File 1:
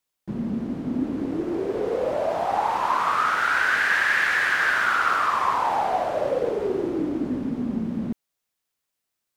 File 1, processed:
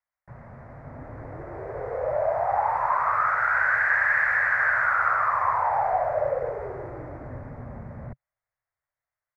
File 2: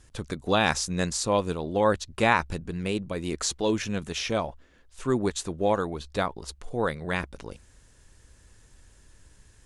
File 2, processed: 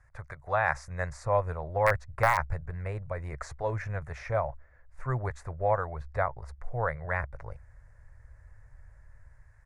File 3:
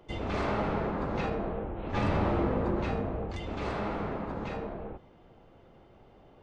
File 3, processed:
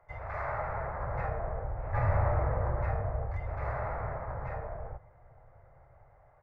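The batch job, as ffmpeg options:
ffmpeg -i in.wav -filter_complex "[0:a]acrossover=split=520[link_01][link_02];[link_01]dynaudnorm=framelen=370:gausssize=5:maxgain=9dB[link_03];[link_03][link_02]amix=inputs=2:normalize=0,aeval=exprs='(mod(1.78*val(0)+1,2)-1)/1.78':channel_layout=same,firequalizer=gain_entry='entry(130,0);entry(190,-23);entry(310,-23);entry(590,2);entry(2000,5);entry(3000,-24);entry(4700,-16)':delay=0.05:min_phase=1,volume=-5dB" out.wav

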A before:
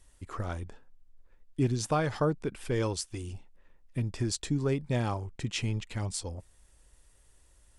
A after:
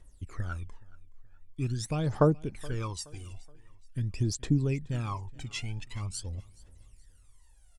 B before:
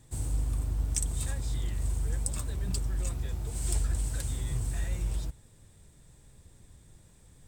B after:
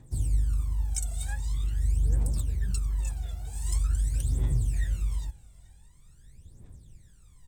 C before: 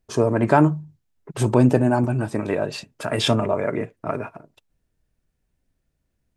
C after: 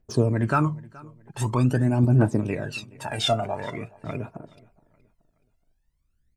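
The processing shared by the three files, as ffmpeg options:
ffmpeg -i in.wav -filter_complex "[0:a]aphaser=in_gain=1:out_gain=1:delay=1.5:decay=0.79:speed=0.45:type=triangular,asplit=2[link_01][link_02];[link_02]aecho=0:1:423|846|1269:0.0708|0.0269|0.0102[link_03];[link_01][link_03]amix=inputs=2:normalize=0,volume=-7dB" out.wav

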